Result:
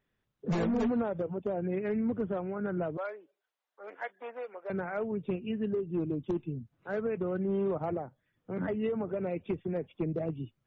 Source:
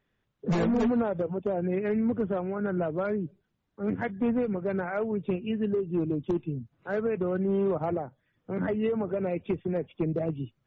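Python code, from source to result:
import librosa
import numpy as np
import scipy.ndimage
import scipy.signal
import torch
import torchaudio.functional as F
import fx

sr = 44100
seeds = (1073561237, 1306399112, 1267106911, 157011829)

y = fx.highpass(x, sr, hz=550.0, slope=24, at=(2.97, 4.7))
y = F.gain(torch.from_numpy(y), -4.0).numpy()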